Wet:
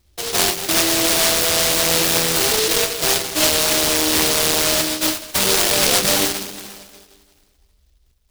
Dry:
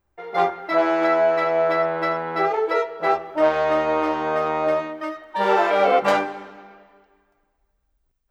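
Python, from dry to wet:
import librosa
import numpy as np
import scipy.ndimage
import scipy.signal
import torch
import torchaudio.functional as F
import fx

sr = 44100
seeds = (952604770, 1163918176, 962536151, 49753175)

p1 = fx.peak_eq(x, sr, hz=69.0, db=8.5, octaves=0.77)
p2 = fx.over_compress(p1, sr, threshold_db=-25.0, ratio=-0.5)
p3 = p1 + (p2 * librosa.db_to_amplitude(0.0))
p4 = fx.sample_hold(p3, sr, seeds[0], rate_hz=3400.0, jitter_pct=0)
y = fx.noise_mod_delay(p4, sr, seeds[1], noise_hz=4100.0, depth_ms=0.34)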